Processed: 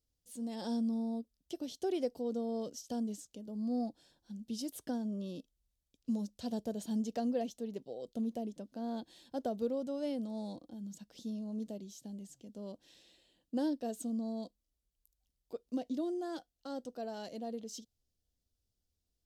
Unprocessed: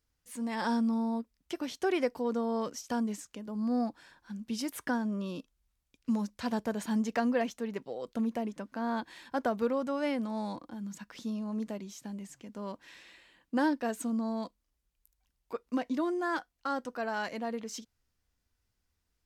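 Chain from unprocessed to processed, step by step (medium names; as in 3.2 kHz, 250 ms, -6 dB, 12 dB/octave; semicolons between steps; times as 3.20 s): high-order bell 1.5 kHz -15.5 dB; trim -4.5 dB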